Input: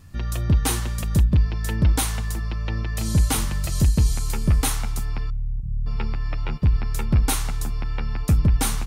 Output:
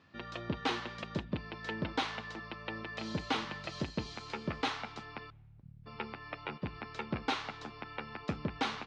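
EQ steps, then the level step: HPF 310 Hz 12 dB/oct; ladder low-pass 5500 Hz, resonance 20%; air absorption 130 m; +1.0 dB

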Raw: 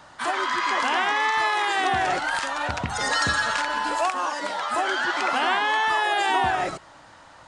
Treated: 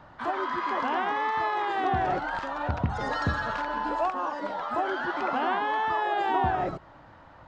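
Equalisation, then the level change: low shelf 190 Hz +6 dB; dynamic EQ 2200 Hz, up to -5 dB, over -40 dBFS, Q 1.3; tape spacing loss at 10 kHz 33 dB; 0.0 dB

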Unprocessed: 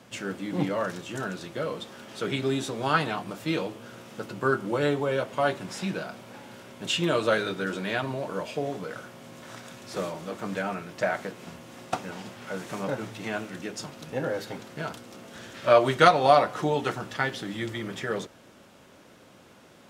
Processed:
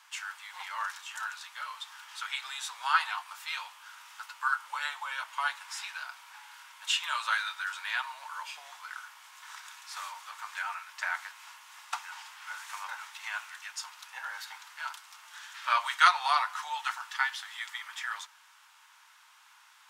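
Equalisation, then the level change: Chebyshev high-pass 900 Hz, order 5; 0.0 dB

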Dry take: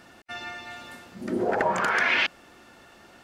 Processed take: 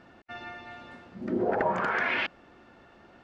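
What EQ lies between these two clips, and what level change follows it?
tape spacing loss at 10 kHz 34 dB; high shelf 5300 Hz +8.5 dB; 0.0 dB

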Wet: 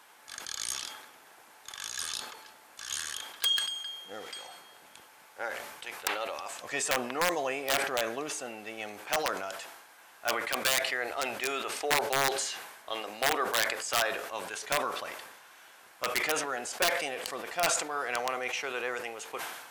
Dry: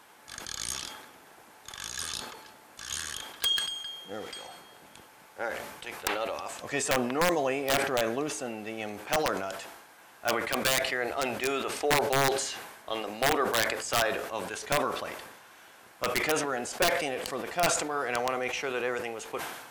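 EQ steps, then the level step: low shelf 400 Hz -11.5 dB; 0.0 dB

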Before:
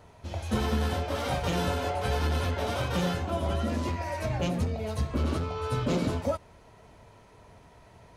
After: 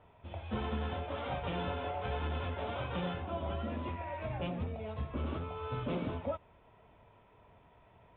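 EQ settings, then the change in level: rippled Chebyshev low-pass 3600 Hz, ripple 3 dB; -6.0 dB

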